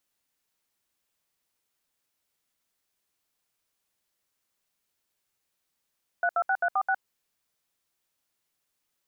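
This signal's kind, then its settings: DTMF "326346", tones 61 ms, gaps 70 ms, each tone -24.5 dBFS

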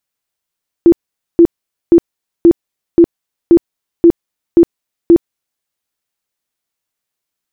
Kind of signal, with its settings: tone bursts 339 Hz, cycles 21, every 0.53 s, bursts 9, -1.5 dBFS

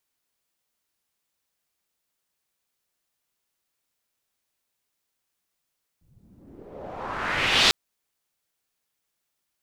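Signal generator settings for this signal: swept filtered noise white, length 1.70 s lowpass, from 100 Hz, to 4300 Hz, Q 2.1, exponential, gain ramp +28 dB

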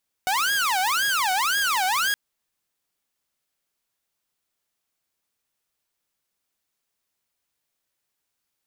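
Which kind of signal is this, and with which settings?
siren wail 738–1650 Hz 1.9/s saw -18 dBFS 1.87 s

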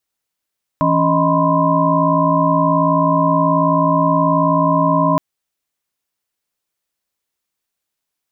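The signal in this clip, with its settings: chord E3/C#4/D#5/B5/C6 sine, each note -18 dBFS 4.37 s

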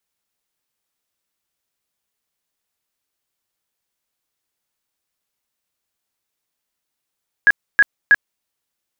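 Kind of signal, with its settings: tone bursts 1660 Hz, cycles 59, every 0.32 s, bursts 3, -6.5 dBFS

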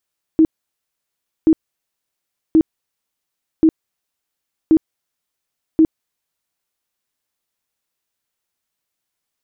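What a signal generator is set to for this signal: tone bursts 319 Hz, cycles 19, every 1.08 s, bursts 6, -7 dBFS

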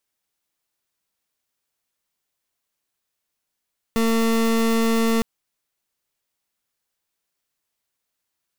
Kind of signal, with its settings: pulse 227 Hz, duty 29% -19 dBFS 1.26 s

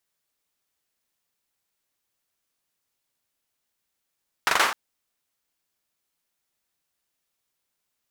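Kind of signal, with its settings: hand clap length 0.26 s, apart 42 ms, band 1200 Hz, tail 0.49 s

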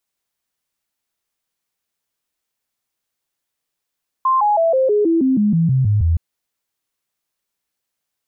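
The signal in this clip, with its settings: stepped sine 1050 Hz down, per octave 3, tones 12, 0.16 s, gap 0.00 s -12 dBFS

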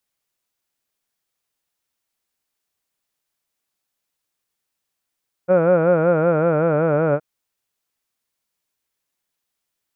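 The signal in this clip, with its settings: formant vowel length 1.72 s, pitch 175 Hz, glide -2.5 st, vibrato depth 1.15 st, F1 550 Hz, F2 1400 Hz, F3 2400 Hz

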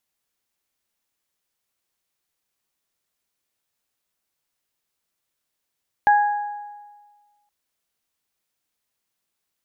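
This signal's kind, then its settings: additive tone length 1.42 s, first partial 827 Hz, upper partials -7 dB, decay 1.50 s, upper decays 1.01 s, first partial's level -11 dB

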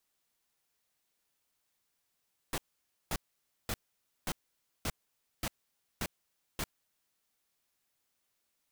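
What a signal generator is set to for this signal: noise bursts pink, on 0.05 s, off 0.53 s, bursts 8, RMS -34 dBFS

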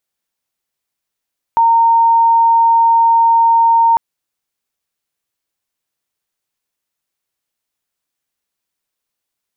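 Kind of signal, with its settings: tone sine 920 Hz -7 dBFS 2.40 s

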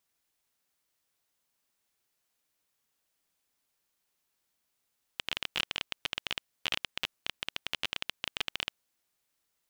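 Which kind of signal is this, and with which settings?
random clicks 18/s -13 dBFS 3.64 s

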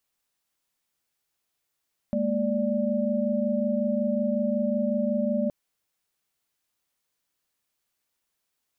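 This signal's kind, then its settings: chord G#3/A#3/D5 sine, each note -27 dBFS 3.37 s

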